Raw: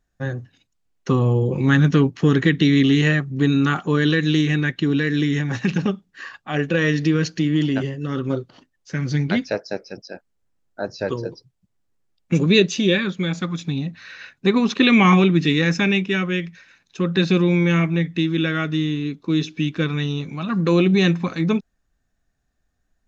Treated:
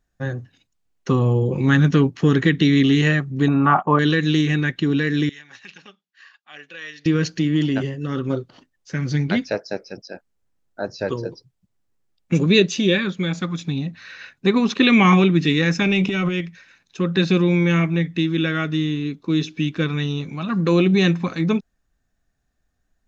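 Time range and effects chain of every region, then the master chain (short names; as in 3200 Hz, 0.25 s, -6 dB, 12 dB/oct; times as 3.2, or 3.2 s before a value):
3.48–3.99 gate -35 dBFS, range -15 dB + Butterworth band-stop 5100 Hz, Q 0.63 + band shelf 840 Hz +13.5 dB 1.2 oct
5.29–7.06 LPF 3700 Hz + differentiator
15.82–16.41 transient shaper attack -9 dB, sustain +11 dB + notch 1700 Hz, Q 5.5
whole clip: dry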